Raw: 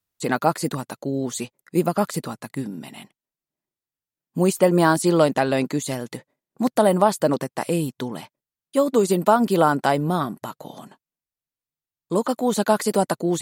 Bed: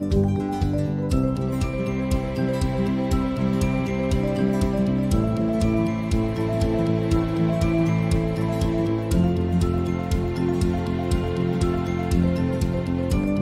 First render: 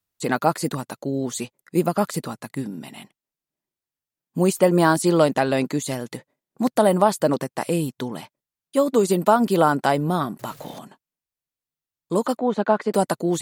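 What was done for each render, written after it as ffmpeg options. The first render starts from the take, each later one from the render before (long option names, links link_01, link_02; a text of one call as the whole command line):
ffmpeg -i in.wav -filter_complex "[0:a]asettb=1/sr,asplit=3[link_01][link_02][link_03];[link_01]atrim=end=10.394[link_04];[link_02]atrim=start=10.39:end=10.79,asetpts=PTS-STARTPTS,afade=type=in:duration=0.004:curve=qsin,afade=type=out:start_time=0.396:duration=0.004:curve=qsin,aeval=exprs='val(0)+0.5*0.0106*sgn(val(0))':channel_layout=same[link_05];[link_03]atrim=start=10.786[link_06];[link_04][link_05]acrossfade=duration=0.004:curve1=hsin:curve2=qsin[link_07];[link_07][link_06]acrossfade=duration=0.004:curve1=qsin:curve2=hsin,asettb=1/sr,asplit=3[link_08][link_09][link_10];[link_08]atrim=end=12.374[link_11];[link_09]atrim=start=12.37:end=12.94,asetpts=PTS-STARTPTS,afade=type=in:duration=0.004:curve=qsin,afade=type=out:start_time=0.566:duration=0.004:curve=qsin,highpass=180,lowpass=2100[link_12];[link_10]atrim=start=12.936[link_13];[link_11][link_12]acrossfade=duration=0.004:curve1=hsin:curve2=qsin[link_14];[link_14][link_13]acrossfade=duration=0.004:curve1=qsin:curve2=hsin" out.wav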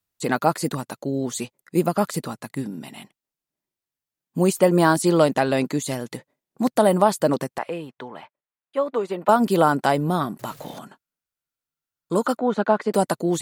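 ffmpeg -i in.wav -filter_complex "[0:a]asettb=1/sr,asplit=3[link_01][link_02][link_03];[link_01]atrim=end=7.584[link_04];[link_02]atrim=start=7.58:end=9.29,asetpts=PTS-STARTPTS,afade=type=in:duration=0.004:curve=qsin,afade=type=out:start_time=1.706:duration=0.004:curve=qsin,acrossover=split=480 2900:gain=0.2 1 0.0631[link_05][link_06][link_07];[link_05][link_06][link_07]amix=inputs=3:normalize=0[link_08];[link_03]atrim=start=9.286[link_09];[link_04][link_08]acrossfade=duration=0.004:curve1=hsin:curve2=qsin[link_10];[link_10][link_09]acrossfade=duration=0.004:curve1=qsin:curve2=hsin,asettb=1/sr,asplit=3[link_11][link_12][link_13];[link_11]atrim=end=10.774[link_14];[link_12]atrim=start=10.77:end=12.63,asetpts=PTS-STARTPTS,afade=type=in:duration=0.004:curve=qsin,afade=type=out:start_time=1.856:duration=0.004:curve=qsin,equalizer=frequency=1400:width_type=o:width=0.23:gain=10.5[link_15];[link_13]atrim=start=12.626[link_16];[link_14][link_15]acrossfade=duration=0.004:curve1=hsin:curve2=qsin[link_17];[link_17][link_16]acrossfade=duration=0.004:curve1=qsin:curve2=hsin" out.wav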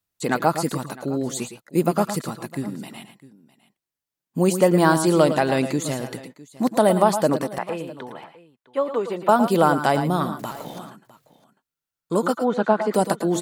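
ffmpeg -i in.wav -af "aecho=1:1:107|113|656:0.168|0.282|0.1" out.wav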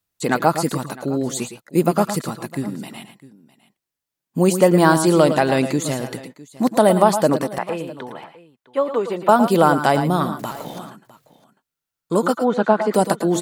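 ffmpeg -i in.wav -af "volume=3dB,alimiter=limit=-1dB:level=0:latency=1" out.wav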